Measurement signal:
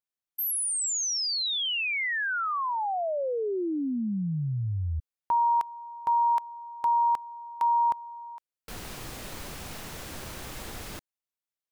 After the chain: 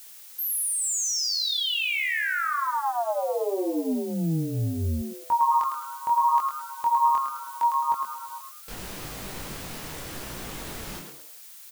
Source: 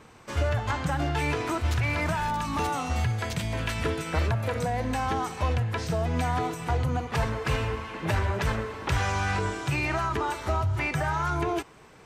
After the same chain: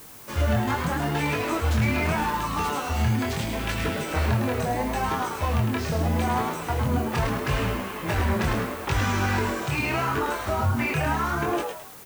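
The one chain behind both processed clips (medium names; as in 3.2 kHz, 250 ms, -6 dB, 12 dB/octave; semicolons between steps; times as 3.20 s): chorus 0.77 Hz, delay 19.5 ms, depth 6.3 ms; frequency-shifting echo 106 ms, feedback 35%, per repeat +140 Hz, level -6 dB; added noise blue -50 dBFS; trim +4 dB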